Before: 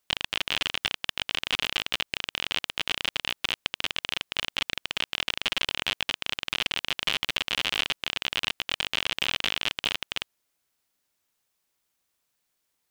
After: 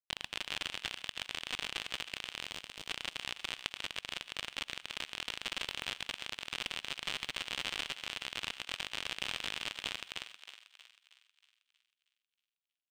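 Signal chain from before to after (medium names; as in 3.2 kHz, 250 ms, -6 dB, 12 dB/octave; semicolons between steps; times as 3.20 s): reverberation, pre-delay 3 ms, DRR 10 dB; power-law waveshaper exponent 1.4; 2.41–2.87 s: peaking EQ 1.9 kHz -2.5 dB -> -13 dB 2 oct; thinning echo 317 ms, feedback 51%, high-pass 700 Hz, level -10.5 dB; trim -7 dB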